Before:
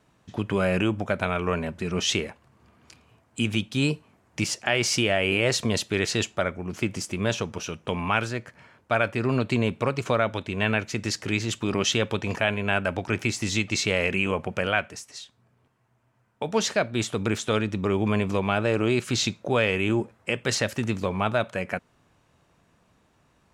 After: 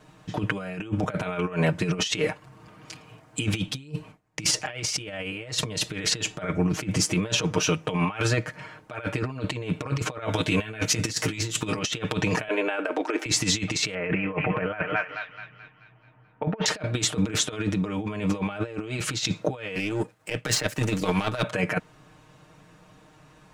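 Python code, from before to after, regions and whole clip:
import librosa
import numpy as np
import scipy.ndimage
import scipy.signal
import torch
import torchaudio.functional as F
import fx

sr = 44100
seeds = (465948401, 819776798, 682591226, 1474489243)

y = fx.chain(x, sr, fx.gate_hold(open_db=-48.0, close_db=-54.0, hold_ms=71.0, range_db=-21, attack_ms=1.4, release_ms=100.0),
    fx.low_shelf(hz=77.0, db=11.0), at=(3.67, 7.07))
y = fx.chain(y, sr, fx.high_shelf(hz=6500.0, db=11.0),
    fx.doubler(ms=18.0, db=-4.0), at=(10.25, 11.79))
y = fx.chain(y, sr, fx.steep_highpass(hz=280.0, slope=48),
    fx.high_shelf(hz=2100.0, db=-8.5), at=(12.48, 13.26))
y = fx.chain(y, sr, fx.lowpass(hz=2200.0, slope=24),
    fx.echo_thinned(ms=216, feedback_pct=53, hz=990.0, wet_db=-9.5), at=(13.94, 16.66))
y = fx.chain(y, sr, fx.power_curve(exponent=1.4),
    fx.high_shelf(hz=9800.0, db=9.0),
    fx.band_squash(depth_pct=100), at=(19.75, 21.43))
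y = fx.high_shelf(y, sr, hz=10000.0, db=-4.0)
y = y + 0.9 * np.pad(y, (int(6.5 * sr / 1000.0), 0))[:len(y)]
y = fx.over_compress(y, sr, threshold_db=-28.0, ratio=-0.5)
y = y * librosa.db_to_amplitude(2.0)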